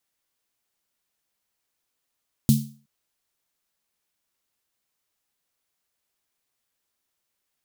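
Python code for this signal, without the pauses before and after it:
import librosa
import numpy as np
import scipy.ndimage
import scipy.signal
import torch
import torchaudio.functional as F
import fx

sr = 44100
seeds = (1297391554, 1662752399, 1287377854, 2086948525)

y = fx.drum_snare(sr, seeds[0], length_s=0.37, hz=140.0, second_hz=220.0, noise_db=-11.5, noise_from_hz=3600.0, decay_s=0.39, noise_decay_s=0.36)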